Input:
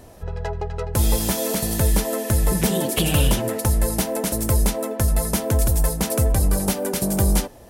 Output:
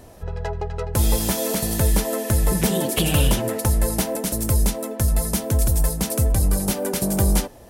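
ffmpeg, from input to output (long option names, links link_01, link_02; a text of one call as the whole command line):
ffmpeg -i in.wav -filter_complex "[0:a]asettb=1/sr,asplit=3[link_01][link_02][link_03];[link_01]atrim=end=4.154[link_04];[link_02]atrim=start=4.15:end=6.71,asetpts=PTS-STARTPTS,afade=type=in:duration=0.004:curve=qsin,afade=type=out:start_time=2.556:duration=0.004:curve=qsin,acrossover=split=300|3000[link_05][link_06][link_07];[link_06]acompressor=threshold=-36dB:ratio=1.5[link_08];[link_05][link_08][link_07]amix=inputs=3:normalize=0[link_09];[link_03]atrim=start=6.706[link_10];[link_04][link_09]acrossfade=duration=0.004:curve1=hsin:curve2=qsin[link_11];[link_11][link_10]acrossfade=duration=0.004:curve1=qsin:curve2=hsin" out.wav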